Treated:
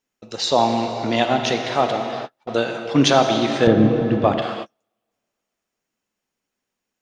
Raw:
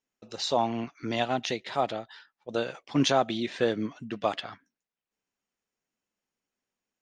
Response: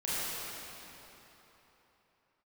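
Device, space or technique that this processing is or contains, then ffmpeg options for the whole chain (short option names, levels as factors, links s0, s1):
keyed gated reverb: -filter_complex "[0:a]asplit=3[s0][s1][s2];[1:a]atrim=start_sample=2205[s3];[s1][s3]afir=irnorm=-1:irlink=0[s4];[s2]apad=whole_len=309325[s5];[s4][s5]sidechaingate=range=0.00631:threshold=0.00224:ratio=16:detection=peak,volume=0.316[s6];[s0][s6]amix=inputs=2:normalize=0,asettb=1/sr,asplit=3[s7][s8][s9];[s7]atrim=end=3.674[s10];[s8]atrim=start=3.67:end=4.42,asetpts=PTS-STARTPTS,afade=t=in:d=0.004:c=qsin,afade=t=out:st=0.746:d=0.004:c=qsin,aemphasis=mode=reproduction:type=riaa[s11];[s9]atrim=start=4.416[s12];[s10][s11]acrossfade=d=0.004:c1=hsin:c2=qsin[s13];[s13][s12]acrossfade=d=0.004:c1=qsin:c2=hsin,volume=2.11"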